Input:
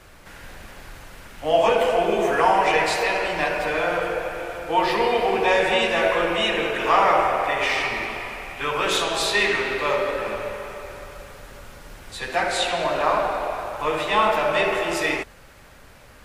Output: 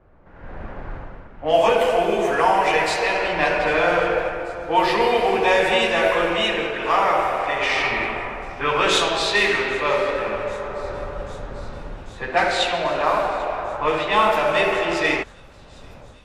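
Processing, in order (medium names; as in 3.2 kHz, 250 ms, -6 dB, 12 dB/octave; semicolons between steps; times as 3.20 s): level-controlled noise filter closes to 840 Hz, open at -16 dBFS; level rider gain up to 15.5 dB; on a send: feedback echo behind a high-pass 792 ms, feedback 82%, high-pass 4.9 kHz, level -20 dB; on the sum: trim -5 dB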